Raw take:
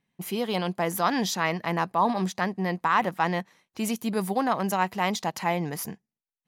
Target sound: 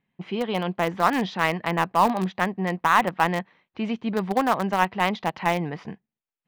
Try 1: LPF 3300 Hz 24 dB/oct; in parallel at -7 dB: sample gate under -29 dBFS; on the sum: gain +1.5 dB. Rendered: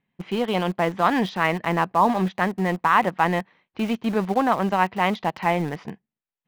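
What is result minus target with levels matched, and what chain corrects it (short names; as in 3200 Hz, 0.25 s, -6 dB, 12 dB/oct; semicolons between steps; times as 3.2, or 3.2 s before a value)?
sample gate: distortion -13 dB
LPF 3300 Hz 24 dB/oct; in parallel at -7 dB: sample gate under -18.5 dBFS; on the sum: gain +1.5 dB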